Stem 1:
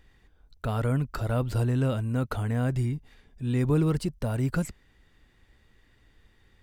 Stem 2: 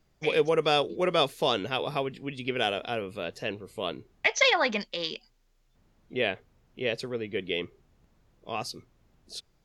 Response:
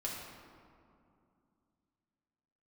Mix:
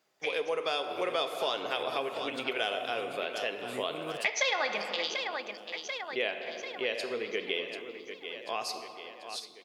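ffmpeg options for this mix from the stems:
-filter_complex "[0:a]adelay=200,volume=-0.5dB[link_01];[1:a]dynaudnorm=framelen=320:gausssize=9:maxgain=3.5dB,volume=-2dB,asplit=4[link_02][link_03][link_04][link_05];[link_03]volume=-4.5dB[link_06];[link_04]volume=-10.5dB[link_07];[link_05]apad=whole_len=301076[link_08];[link_01][link_08]sidechaincompress=threshold=-34dB:ratio=8:attack=38:release=715[link_09];[2:a]atrim=start_sample=2205[link_10];[link_06][link_10]afir=irnorm=-1:irlink=0[link_11];[link_07]aecho=0:1:739|1478|2217|2956|3695|4434|5173|5912:1|0.52|0.27|0.141|0.0731|0.038|0.0198|0.0103[link_12];[link_09][link_02][link_11][link_12]amix=inputs=4:normalize=0,highpass=460,acompressor=threshold=-31dB:ratio=2.5"

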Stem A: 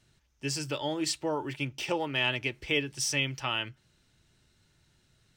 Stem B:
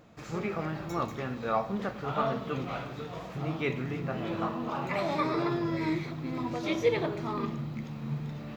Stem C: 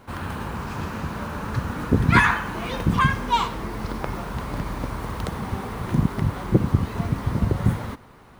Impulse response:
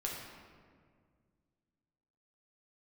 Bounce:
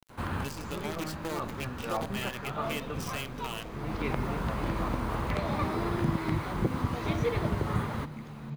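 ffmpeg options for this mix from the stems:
-filter_complex "[0:a]lowpass=frequency=4000:poles=1,acompressor=threshold=-55dB:ratio=1.5,acrusher=bits=7:dc=4:mix=0:aa=0.000001,volume=2.5dB,asplit=2[link_01][link_02];[1:a]adelay=400,volume=-5dB[link_03];[2:a]acrossover=split=590|4100[link_04][link_05][link_06];[link_04]acompressor=threshold=-27dB:ratio=4[link_07];[link_05]acompressor=threshold=-34dB:ratio=4[link_08];[link_06]acompressor=threshold=-54dB:ratio=4[link_09];[link_07][link_08][link_09]amix=inputs=3:normalize=0,adelay=100,volume=-1dB[link_10];[link_02]apad=whole_len=374708[link_11];[link_10][link_11]sidechaincompress=threshold=-45dB:ratio=4:attack=16:release=513[link_12];[link_01][link_03][link_12]amix=inputs=3:normalize=0,bandreject=frequency=5500:width=24,acompressor=mode=upward:threshold=-51dB:ratio=2.5"

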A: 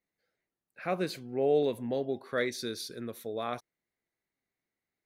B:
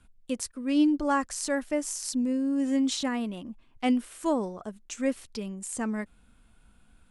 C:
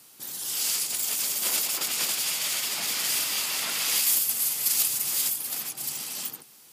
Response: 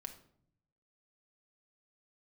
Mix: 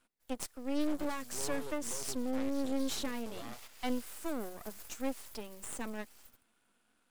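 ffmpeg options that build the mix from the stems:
-filter_complex "[0:a]volume=-2.5dB,asplit=2[link_01][link_02];[1:a]highpass=frequency=250:width=0.5412,highpass=frequency=250:width=1.3066,volume=-2.5dB[link_03];[2:a]acrusher=bits=6:mix=0:aa=0.5,volume=-9.5dB,afade=type=in:start_time=3.52:duration=0.34:silence=0.251189[link_04];[link_02]apad=whole_len=296761[link_05];[link_04][link_05]sidechaingate=range=-11dB:threshold=-50dB:ratio=16:detection=peak[link_06];[link_01][link_06]amix=inputs=2:normalize=0,aeval=exprs='max(val(0),0)':channel_layout=same,acompressor=threshold=-44dB:ratio=1.5,volume=0dB[link_07];[link_03][link_07]amix=inputs=2:normalize=0,acrossover=split=230|3000[link_08][link_09][link_10];[link_09]acompressor=threshold=-30dB:ratio=6[link_11];[link_08][link_11][link_10]amix=inputs=3:normalize=0,aeval=exprs='max(val(0),0)':channel_layout=same"

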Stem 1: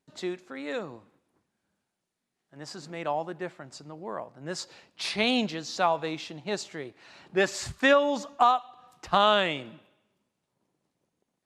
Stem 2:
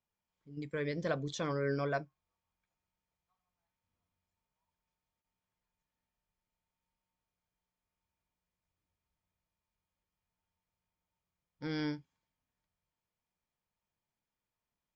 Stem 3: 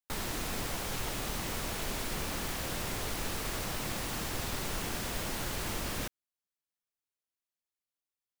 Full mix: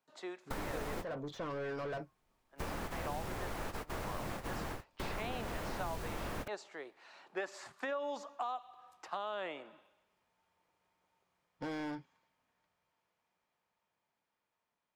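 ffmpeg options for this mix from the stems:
ffmpeg -i stem1.wav -i stem2.wav -i stem3.wav -filter_complex "[0:a]highpass=380,equalizer=frequency=980:width_type=o:width=1.8:gain=6.5,alimiter=limit=-12dB:level=0:latency=1:release=66,volume=-9dB,asplit=2[link_01][link_02];[1:a]dynaudnorm=framelen=860:gausssize=7:maxgain=7dB,asplit=2[link_03][link_04];[link_04]highpass=frequency=720:poles=1,volume=27dB,asoftclip=type=tanh:threshold=-19dB[link_05];[link_03][link_05]amix=inputs=2:normalize=0,lowpass=frequency=1300:poles=1,volume=-6dB,volume=-10dB[link_06];[2:a]tiltshelf=frequency=970:gain=3.5,adelay=400,volume=1.5dB[link_07];[link_02]apad=whole_len=388096[link_08];[link_07][link_08]sidechaingate=range=-46dB:threshold=-55dB:ratio=16:detection=peak[link_09];[link_01][link_06][link_09]amix=inputs=3:normalize=0,acrossover=split=500|2200[link_10][link_11][link_12];[link_10]acompressor=threshold=-41dB:ratio=4[link_13];[link_11]acompressor=threshold=-41dB:ratio=4[link_14];[link_12]acompressor=threshold=-54dB:ratio=4[link_15];[link_13][link_14][link_15]amix=inputs=3:normalize=0" out.wav

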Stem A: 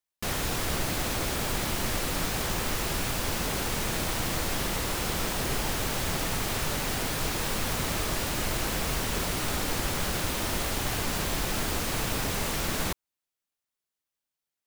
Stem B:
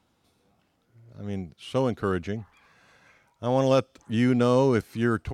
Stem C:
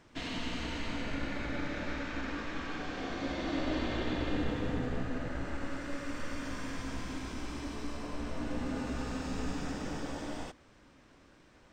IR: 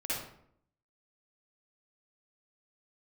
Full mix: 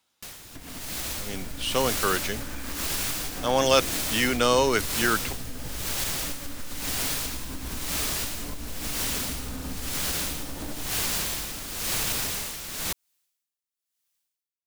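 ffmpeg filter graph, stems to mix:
-filter_complex "[0:a]aeval=exprs='val(0)*pow(10,-19*(0.5-0.5*cos(2*PI*0.99*n/s))/20)':channel_layout=same,volume=-6.5dB[link_01];[1:a]lowshelf=frequency=410:gain=-11.5,acrossover=split=240|3000[link_02][link_03][link_04];[link_02]acompressor=threshold=-39dB:ratio=6[link_05];[link_05][link_03][link_04]amix=inputs=3:normalize=0,volume=-7dB[link_06];[2:a]lowpass=1500,lowshelf=frequency=170:gain=11,acompressor=threshold=-38dB:ratio=4,adelay=400,volume=-0.5dB[link_07];[link_01][link_07]amix=inputs=2:normalize=0,acompressor=threshold=-42dB:ratio=6,volume=0dB[link_08];[link_06][link_08]amix=inputs=2:normalize=0,highshelf=frequency=2100:gain=12,dynaudnorm=framelen=410:gausssize=5:maxgain=11dB"

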